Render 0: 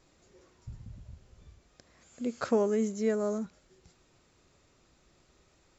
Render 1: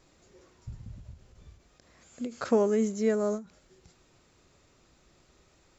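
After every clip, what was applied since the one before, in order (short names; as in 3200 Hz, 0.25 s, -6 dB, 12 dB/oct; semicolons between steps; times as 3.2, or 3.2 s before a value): ending taper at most 190 dB/s; gain +2.5 dB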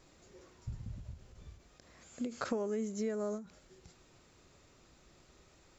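compressor 6:1, threshold -33 dBFS, peak gain reduction 13.5 dB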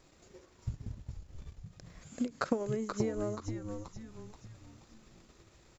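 transient shaper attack +6 dB, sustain -12 dB; on a send: frequency-shifting echo 0.48 s, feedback 45%, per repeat -110 Hz, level -5.5 dB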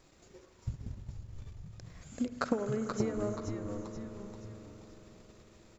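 reverb RT60 5.4 s, pre-delay 67 ms, DRR 8.5 dB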